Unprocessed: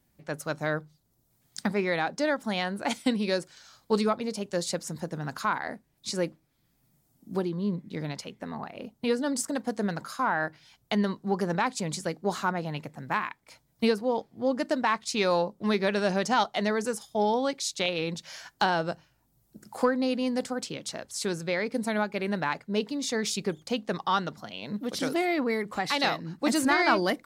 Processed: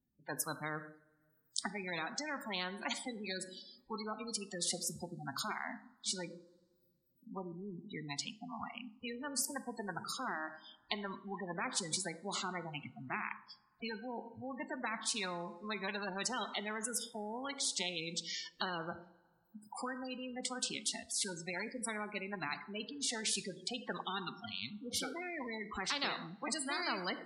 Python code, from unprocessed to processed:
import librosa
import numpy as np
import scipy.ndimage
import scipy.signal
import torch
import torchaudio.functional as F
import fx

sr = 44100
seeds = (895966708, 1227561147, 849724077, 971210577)

y = fx.noise_reduce_blind(x, sr, reduce_db=25)
y = fx.spec_gate(y, sr, threshold_db=-20, keep='strong')
y = fx.graphic_eq_15(y, sr, hz=(250, 630, 2500, 6300), db=(6, -7, -8, -7))
y = fx.rev_double_slope(y, sr, seeds[0], early_s=0.41, late_s=1.8, knee_db=-28, drr_db=17.5)
y = fx.spectral_comp(y, sr, ratio=4.0)
y = y * 10.0 ** (-4.0 / 20.0)